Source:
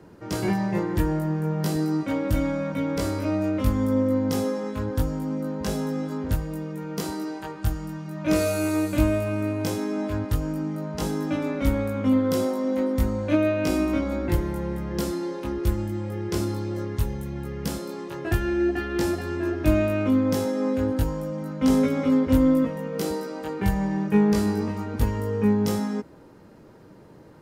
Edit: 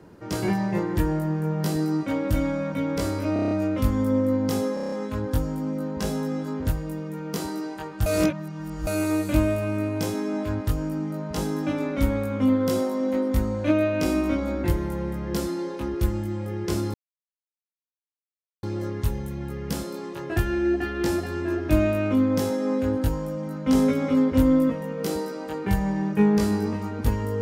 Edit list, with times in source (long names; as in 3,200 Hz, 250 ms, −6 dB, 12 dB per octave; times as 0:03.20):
0:03.33: stutter 0.03 s, 7 plays
0:04.56: stutter 0.03 s, 7 plays
0:07.70–0:08.51: reverse
0:16.58: splice in silence 1.69 s